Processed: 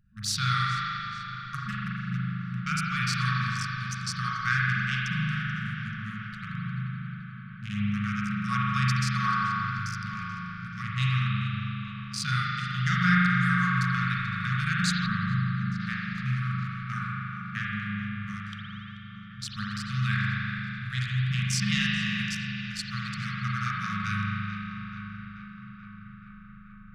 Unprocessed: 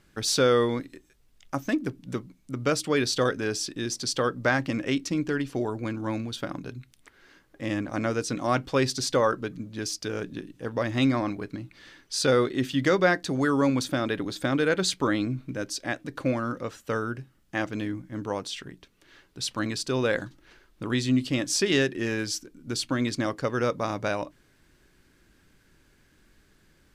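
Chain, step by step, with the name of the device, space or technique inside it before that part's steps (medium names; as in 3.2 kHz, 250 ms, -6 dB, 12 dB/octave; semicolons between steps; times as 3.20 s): local Wiener filter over 41 samples; dub delay into a spring reverb (filtered feedback delay 434 ms, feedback 80%, low-pass 3.7 kHz, level -13 dB; spring tank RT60 3.5 s, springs 39 ms, chirp 50 ms, DRR -6 dB); 15.06–15.80 s: low-pass 1.5 kHz 6 dB/octave; FFT band-reject 220–1100 Hz; trim -1.5 dB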